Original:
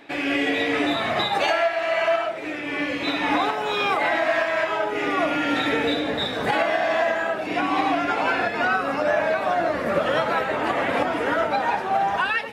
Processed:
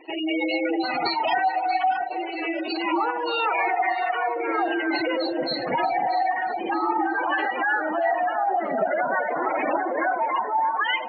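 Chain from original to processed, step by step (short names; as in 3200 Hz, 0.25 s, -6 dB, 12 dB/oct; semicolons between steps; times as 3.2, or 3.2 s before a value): spectral gate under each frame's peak -10 dB strong; wide varispeed 1.13×; echo with dull and thin repeats by turns 0.317 s, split 1100 Hz, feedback 62%, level -9.5 dB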